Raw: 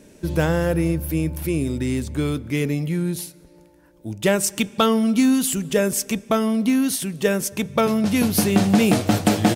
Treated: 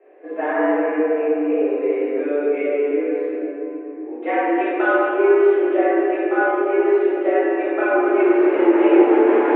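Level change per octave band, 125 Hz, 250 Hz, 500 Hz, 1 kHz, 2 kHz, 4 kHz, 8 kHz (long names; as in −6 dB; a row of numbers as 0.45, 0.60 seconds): below −40 dB, 0.0 dB, +8.0 dB, +5.5 dB, +5.0 dB, below −15 dB, below −40 dB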